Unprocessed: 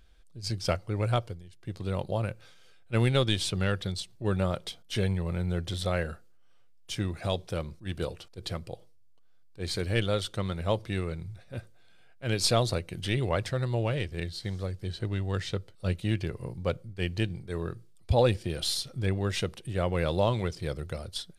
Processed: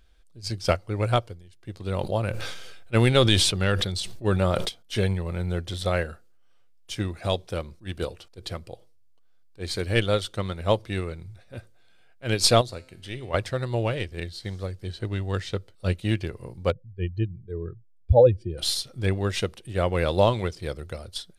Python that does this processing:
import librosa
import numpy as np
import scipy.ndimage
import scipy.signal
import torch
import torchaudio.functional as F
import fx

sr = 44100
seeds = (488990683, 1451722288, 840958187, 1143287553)

y = fx.sustainer(x, sr, db_per_s=23.0, at=(1.92, 4.69))
y = fx.comb_fb(y, sr, f0_hz=130.0, decay_s=0.81, harmonics='all', damping=0.0, mix_pct=60, at=(12.61, 13.34))
y = fx.spec_expand(y, sr, power=1.9, at=(16.7, 18.57), fade=0.02)
y = fx.peak_eq(y, sr, hz=150.0, db=-5.5, octaves=0.64)
y = fx.upward_expand(y, sr, threshold_db=-37.0, expansion=1.5)
y = y * 10.0 ** (8.5 / 20.0)